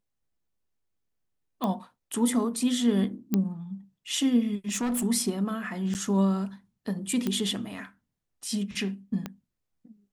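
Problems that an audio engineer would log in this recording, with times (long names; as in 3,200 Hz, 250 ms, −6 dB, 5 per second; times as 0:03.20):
0:01.64: click −17 dBFS
0:03.34: click −12 dBFS
0:04.68–0:05.05: clipping −25 dBFS
0:05.94–0:05.95: drop-out 9.2 ms
0:07.27: click −15 dBFS
0:09.26: click −19 dBFS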